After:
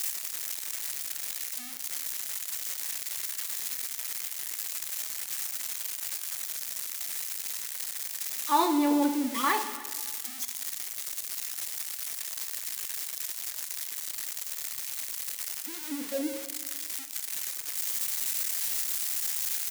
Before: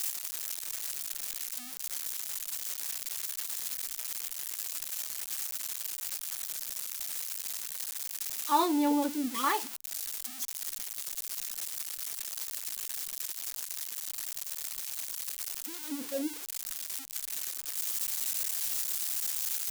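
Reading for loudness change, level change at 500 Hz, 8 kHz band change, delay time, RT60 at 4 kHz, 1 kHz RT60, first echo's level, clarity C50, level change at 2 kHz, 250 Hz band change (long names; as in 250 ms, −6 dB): +2.0 dB, +2.5 dB, +2.0 dB, 310 ms, 1.2 s, 1.4 s, −20.5 dB, 9.0 dB, +4.5 dB, +3.0 dB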